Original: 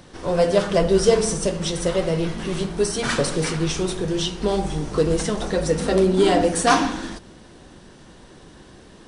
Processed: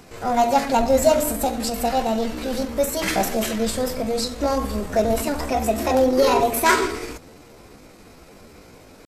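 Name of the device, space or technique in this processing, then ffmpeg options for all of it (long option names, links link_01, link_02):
chipmunk voice: -af "asetrate=60591,aresample=44100,atempo=0.727827"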